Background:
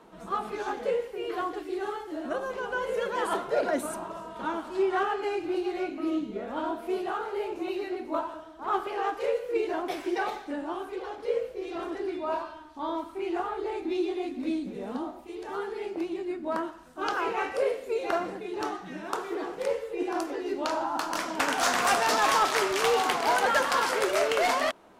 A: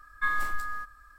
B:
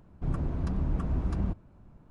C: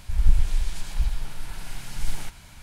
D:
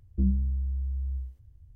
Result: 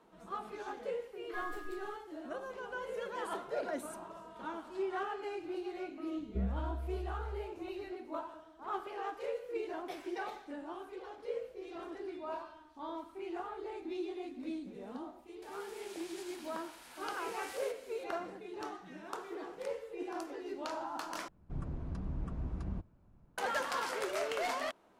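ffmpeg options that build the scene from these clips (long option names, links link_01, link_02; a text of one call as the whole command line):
ffmpeg -i bed.wav -i cue0.wav -i cue1.wav -i cue2.wav -i cue3.wav -filter_complex "[0:a]volume=-10.5dB[link_01];[1:a]aeval=exprs='sgn(val(0))*max(abs(val(0))-0.00335,0)':channel_layout=same[link_02];[3:a]highpass=frequency=420:width=0.5412,highpass=frequency=420:width=1.3066[link_03];[link_01]asplit=2[link_04][link_05];[link_04]atrim=end=21.284[link_06];[2:a]atrim=end=2.1,asetpts=PTS-STARTPTS,volume=-9.5dB[link_07];[link_05]atrim=start=23.376[link_08];[link_02]atrim=end=1.18,asetpts=PTS-STARTPTS,volume=-15dB,afade=type=in:duration=0.004:curve=hsin,afade=type=out:start_time=1.176:duration=0.004:curve=hsin,adelay=1120[link_09];[4:a]atrim=end=1.75,asetpts=PTS-STARTPTS,volume=-10.5dB,afade=type=in:duration=0.004:curve=hsin,afade=type=out:start_time=1.746:duration=0.004:curve=hsin,adelay=6170[link_10];[link_03]atrim=end=2.62,asetpts=PTS-STARTPTS,volume=-9.5dB,afade=type=in:duration=0.004:curve=hsin,afade=type=out:start_time=2.616:duration=0.004:curve=hsin,adelay=15420[link_11];[link_06][link_07]acrossfade=duration=0.004:curve1=hsin:curve2=hsin[link_12];[link_12][link_08]acrossfade=duration=0.004:curve1=hsin:curve2=hsin[link_13];[link_13][link_09][link_10][link_11]amix=inputs=4:normalize=0" out.wav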